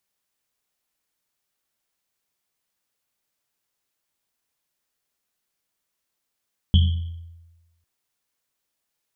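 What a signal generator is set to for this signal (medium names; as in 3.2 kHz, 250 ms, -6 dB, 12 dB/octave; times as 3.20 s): Risset drum, pitch 84 Hz, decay 1.16 s, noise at 3.2 kHz, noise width 320 Hz, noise 15%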